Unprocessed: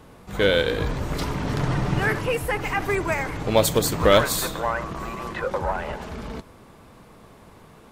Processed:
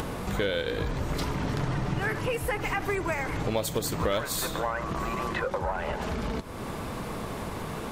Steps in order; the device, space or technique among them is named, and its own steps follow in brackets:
upward and downward compression (upward compression, threshold −26 dBFS; downward compressor 4 to 1, threshold −30 dBFS, peak gain reduction 15.5 dB)
level +3 dB

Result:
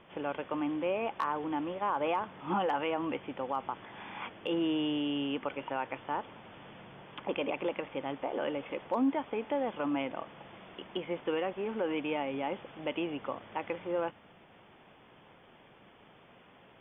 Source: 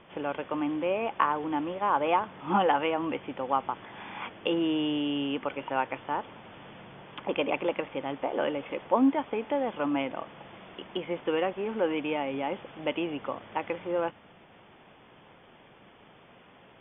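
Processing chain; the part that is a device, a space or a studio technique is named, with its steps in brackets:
clipper into limiter (hard clipping −13.5 dBFS, distortion −33 dB; brickwall limiter −19 dBFS, peak gain reduction 5.5 dB)
level −3 dB

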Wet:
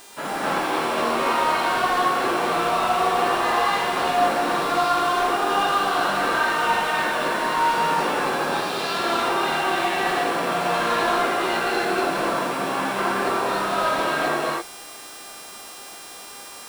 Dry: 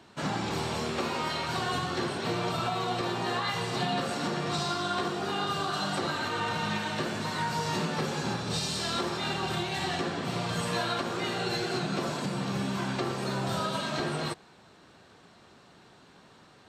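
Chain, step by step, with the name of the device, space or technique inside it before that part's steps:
aircraft radio (band-pass filter 400–2,400 Hz; hard clipping −30 dBFS, distortion −15 dB; hum with harmonics 400 Hz, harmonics 26, −54 dBFS 0 dB per octave; white noise bed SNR 22 dB)
reverb whose tail is shaped and stops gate 300 ms rising, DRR −6 dB
level +6 dB

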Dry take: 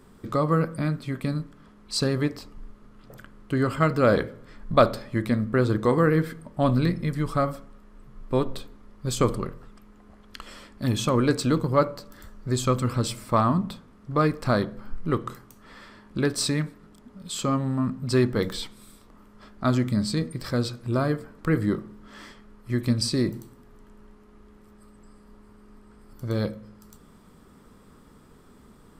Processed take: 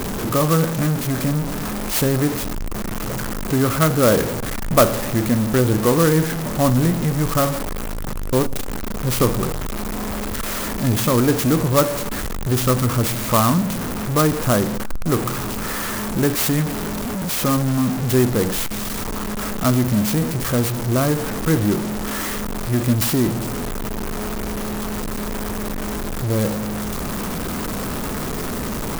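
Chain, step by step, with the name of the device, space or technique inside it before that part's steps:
early CD player with a faulty converter (converter with a step at zero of −22 dBFS; converter with an unsteady clock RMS 0.075 ms)
level +2.5 dB

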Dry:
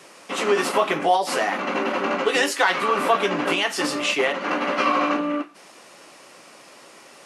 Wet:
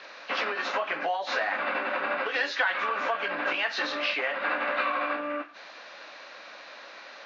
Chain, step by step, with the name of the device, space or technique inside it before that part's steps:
hearing aid with frequency lowering (hearing-aid frequency compression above 2,600 Hz 1.5 to 1; downward compressor 4 to 1, threshold −28 dBFS, peak gain reduction 12.5 dB; loudspeaker in its box 360–5,100 Hz, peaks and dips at 380 Hz −9 dB, 600 Hz +3 dB, 1,600 Hz +9 dB, 2,400 Hz +3 dB, 3,800 Hz +4 dB)

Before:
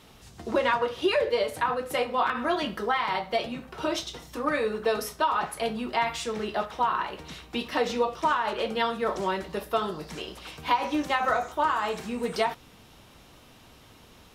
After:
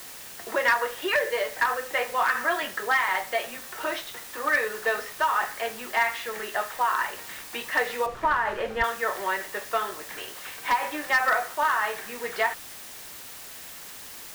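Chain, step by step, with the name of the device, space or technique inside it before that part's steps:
drive-through speaker (band-pass filter 500–3,200 Hz; parametric band 1,800 Hz +12 dB 0.49 octaves; hard clipping −15.5 dBFS, distortion −19 dB; white noise bed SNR 14 dB)
0:08.06–0:08.84: RIAA equalisation playback

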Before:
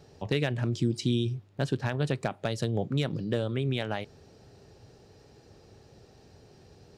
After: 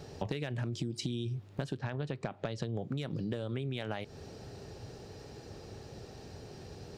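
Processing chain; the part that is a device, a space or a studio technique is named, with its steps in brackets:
0:01.79–0:02.76: high-frequency loss of the air 100 metres
serial compression, leveller first (downward compressor 2.5 to 1, threshold −30 dBFS, peak gain reduction 6 dB; downward compressor 6 to 1, threshold −40 dBFS, peak gain reduction 12.5 dB)
level +7 dB

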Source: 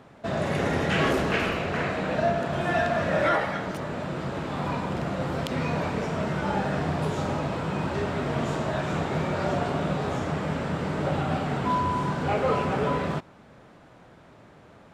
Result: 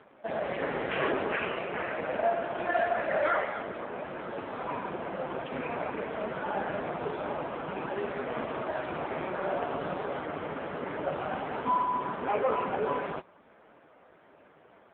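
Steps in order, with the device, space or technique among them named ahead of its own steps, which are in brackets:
telephone (band-pass filter 300–3,100 Hz; AMR narrowband 5.15 kbit/s 8,000 Hz)

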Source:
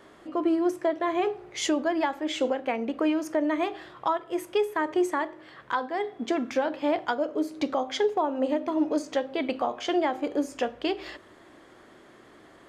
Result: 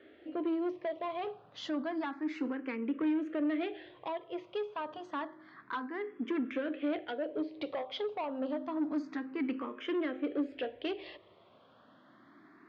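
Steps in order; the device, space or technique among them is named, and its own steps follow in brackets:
barber-pole phaser into a guitar amplifier (frequency shifter mixed with the dry sound +0.29 Hz; soft clipping −25.5 dBFS, distortion −13 dB; loudspeaker in its box 96–3,800 Hz, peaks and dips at 140 Hz −4 dB, 280 Hz +5 dB, 820 Hz −6 dB)
level −3.5 dB

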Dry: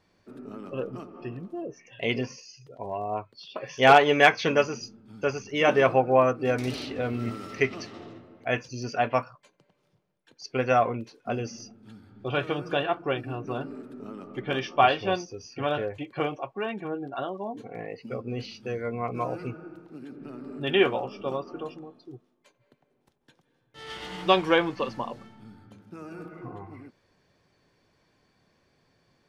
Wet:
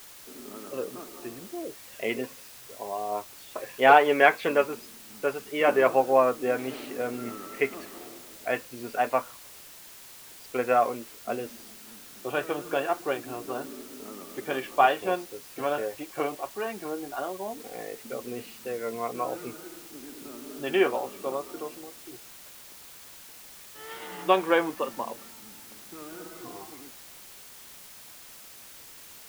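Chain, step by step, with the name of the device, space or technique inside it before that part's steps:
wax cylinder (band-pass filter 280–2,300 Hz; tape wow and flutter; white noise bed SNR 18 dB)

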